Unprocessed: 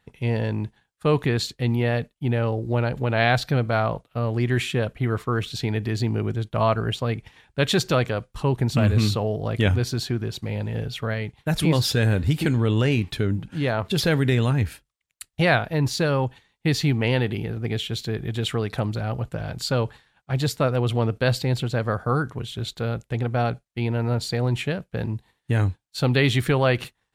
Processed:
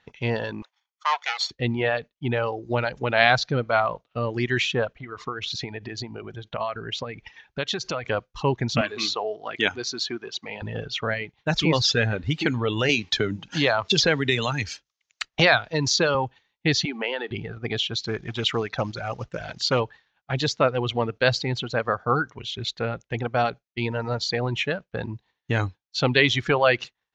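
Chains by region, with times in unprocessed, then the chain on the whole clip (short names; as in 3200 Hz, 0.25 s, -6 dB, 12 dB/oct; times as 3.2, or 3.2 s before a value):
0.62–1.51 minimum comb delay 0.9 ms + HPF 730 Hz 24 dB/oct
5–8.09 transient shaper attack +9 dB, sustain +4 dB + compressor 3:1, threshold -30 dBFS
8.81–10.62 HPF 290 Hz + bell 540 Hz -10.5 dB 0.23 oct
12.89–16.15 tone controls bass -2 dB, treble +8 dB + three-band squash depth 70%
16.85–17.31 steep high-pass 220 Hz + compressor 3:1, threshold -25 dBFS
18.05–19.8 companded quantiser 6-bit + Doppler distortion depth 0.13 ms
whole clip: elliptic low-pass 6400 Hz, stop band 40 dB; reverb removal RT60 1.8 s; low shelf 270 Hz -10 dB; gain +5.5 dB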